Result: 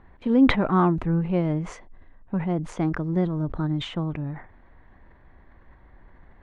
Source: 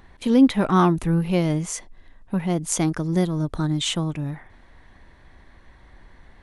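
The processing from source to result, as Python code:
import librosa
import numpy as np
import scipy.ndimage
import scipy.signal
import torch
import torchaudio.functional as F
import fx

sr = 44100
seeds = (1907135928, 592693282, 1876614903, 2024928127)

y = scipy.signal.sosfilt(scipy.signal.butter(2, 1700.0, 'lowpass', fs=sr, output='sos'), x)
y = fx.sustainer(y, sr, db_per_s=110.0)
y = y * 10.0 ** (-2.5 / 20.0)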